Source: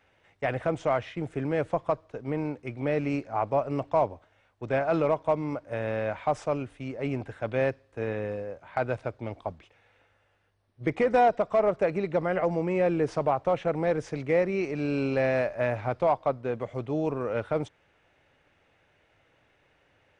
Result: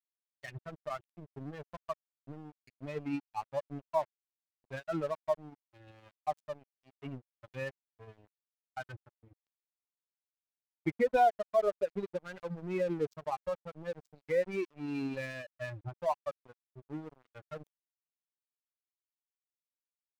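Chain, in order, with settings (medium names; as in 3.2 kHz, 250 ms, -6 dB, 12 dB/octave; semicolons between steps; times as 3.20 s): expander on every frequency bin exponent 3; crossover distortion -45.5 dBFS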